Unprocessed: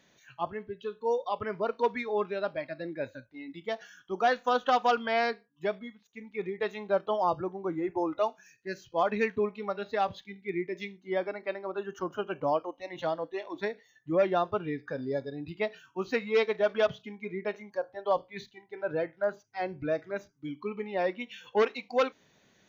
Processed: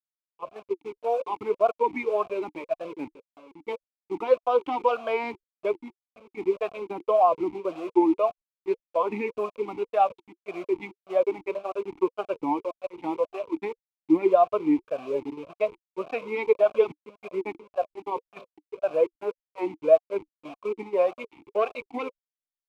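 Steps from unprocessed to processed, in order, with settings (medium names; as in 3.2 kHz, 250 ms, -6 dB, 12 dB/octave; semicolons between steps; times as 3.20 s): send-on-delta sampling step -37.5 dBFS; peak limiter -20 dBFS, peak gain reduction 5 dB; level rider gain up to 16 dB; gate -24 dBFS, range -8 dB; talking filter a-u 1.8 Hz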